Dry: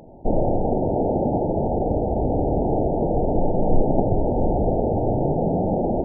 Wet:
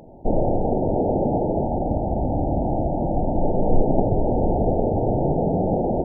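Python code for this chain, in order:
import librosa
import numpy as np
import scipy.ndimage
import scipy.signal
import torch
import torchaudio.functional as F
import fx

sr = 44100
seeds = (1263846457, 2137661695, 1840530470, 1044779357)

y = fx.peak_eq(x, sr, hz=430.0, db=-13.5, octaves=0.3, at=(1.63, 3.43))
y = y + 10.0 ** (-11.5 / 20.0) * np.pad(y, (int(625 * sr / 1000.0), 0))[:len(y)]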